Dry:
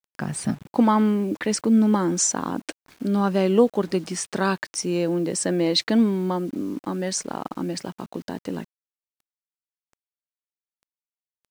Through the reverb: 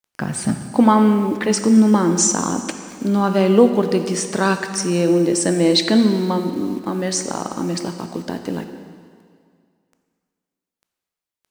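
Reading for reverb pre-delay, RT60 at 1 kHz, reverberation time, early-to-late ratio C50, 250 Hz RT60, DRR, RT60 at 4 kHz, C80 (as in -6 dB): 6 ms, 2.1 s, 2.1 s, 8.0 dB, 2.0 s, 7.0 dB, 2.0 s, 9.0 dB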